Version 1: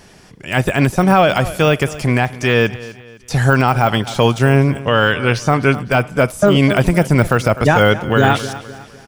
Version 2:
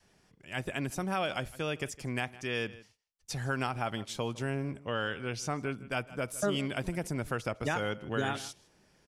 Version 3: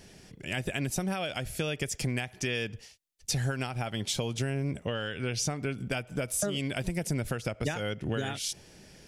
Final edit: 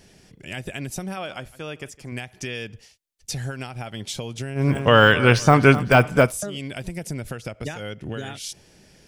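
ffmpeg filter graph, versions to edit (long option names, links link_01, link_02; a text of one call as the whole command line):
ffmpeg -i take0.wav -i take1.wav -i take2.wav -filter_complex "[2:a]asplit=3[link_01][link_02][link_03];[link_01]atrim=end=1.172[link_04];[1:a]atrim=start=1.168:end=2.122[link_05];[link_02]atrim=start=2.118:end=4.79[link_06];[0:a]atrim=start=4.55:end=6.4[link_07];[link_03]atrim=start=6.16[link_08];[link_04][link_05]acrossfade=duration=0.004:curve1=hsin:curve2=hsin[link_09];[link_09][link_06]acrossfade=duration=0.004:curve1=hsin:curve2=hsin[link_10];[link_10][link_07]acrossfade=duration=0.24:curve1=tri:curve2=tri[link_11];[link_11][link_08]acrossfade=duration=0.24:curve1=tri:curve2=tri" out.wav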